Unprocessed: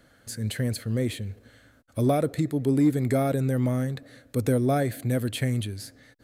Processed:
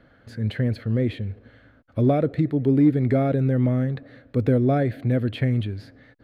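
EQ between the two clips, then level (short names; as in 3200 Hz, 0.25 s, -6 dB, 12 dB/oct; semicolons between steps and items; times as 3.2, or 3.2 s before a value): high shelf 12000 Hz +5.5 dB; dynamic EQ 980 Hz, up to -6 dB, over -42 dBFS, Q 1.8; air absorption 350 m; +4.5 dB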